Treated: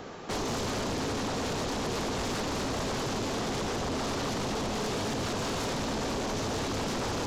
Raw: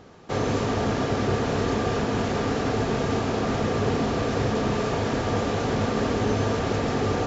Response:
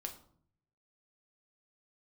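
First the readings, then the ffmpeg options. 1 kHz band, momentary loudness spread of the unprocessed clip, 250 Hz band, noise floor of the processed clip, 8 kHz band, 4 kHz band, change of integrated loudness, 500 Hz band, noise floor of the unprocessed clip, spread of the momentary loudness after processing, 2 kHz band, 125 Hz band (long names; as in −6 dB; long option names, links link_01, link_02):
−5.5 dB, 1 LU, −7.5 dB, −32 dBFS, can't be measured, 0.0 dB, −6.5 dB, −8.0 dB, −28 dBFS, 0 LU, −5.0 dB, −9.5 dB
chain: -filter_complex "[0:a]equalizer=frequency=80:width=0.44:gain=-7.5,acrossover=split=440|3000[link_01][link_02][link_03];[link_02]acompressor=threshold=-47dB:ratio=3[link_04];[link_01][link_04][link_03]amix=inputs=3:normalize=0,alimiter=limit=-23.5dB:level=0:latency=1:release=98,aeval=exprs='0.0891*sin(PI/2*3.98*val(0)/0.0891)':channel_layout=same,volume=-7.5dB"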